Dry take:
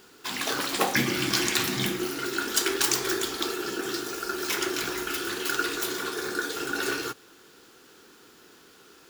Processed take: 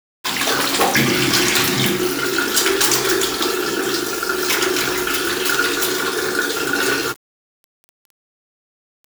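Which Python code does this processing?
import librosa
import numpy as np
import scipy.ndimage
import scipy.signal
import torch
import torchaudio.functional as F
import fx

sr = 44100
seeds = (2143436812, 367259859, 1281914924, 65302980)

y = fx.hum_notches(x, sr, base_hz=50, count=8)
y = fx.leveller(y, sr, passes=3)
y = fx.quant_dither(y, sr, seeds[0], bits=6, dither='none')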